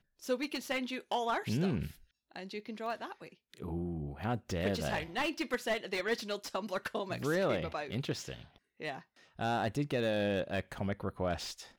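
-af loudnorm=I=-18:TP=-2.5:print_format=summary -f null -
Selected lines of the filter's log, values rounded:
Input Integrated:    -35.7 LUFS
Input True Peak:     -19.3 dBTP
Input LRA:             2.3 LU
Input Threshold:     -46.1 LUFS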